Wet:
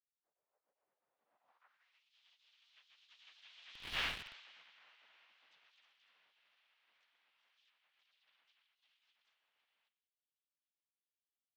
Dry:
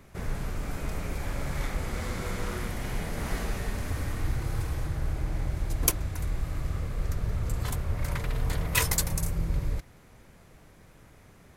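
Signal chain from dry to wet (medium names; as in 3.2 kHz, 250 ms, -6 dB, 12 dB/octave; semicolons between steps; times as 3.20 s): fade-in on the opening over 2.01 s; Doppler pass-by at 4.03 s, 21 m/s, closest 1.2 m; feedback delay 64 ms, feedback 59%, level -20 dB; spectral gate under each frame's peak -30 dB weak; low-pass 5.1 kHz 24 dB/octave; peaking EQ 380 Hz -10.5 dB 0.61 oct; harmony voices -5 st -4 dB, +4 st -5 dB, +5 st -3 dB; band-pass sweep 530 Hz -> 3.2 kHz, 1.24–2.12 s; in parallel at -5 dB: companded quantiser 4-bit; on the sum: tilt EQ -3.5 dB/octave; trim +16 dB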